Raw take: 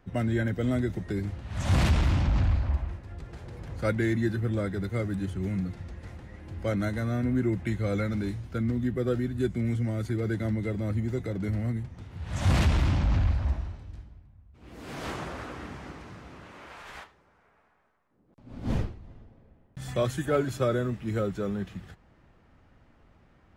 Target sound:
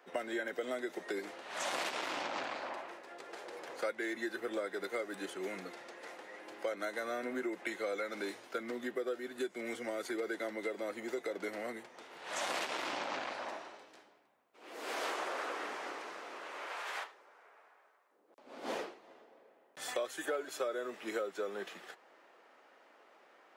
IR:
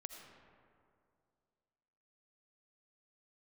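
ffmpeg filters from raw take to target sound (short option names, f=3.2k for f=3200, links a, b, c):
-af "highpass=f=410:w=0.5412,highpass=f=410:w=1.3066,acompressor=threshold=-38dB:ratio=6,volume=4dB"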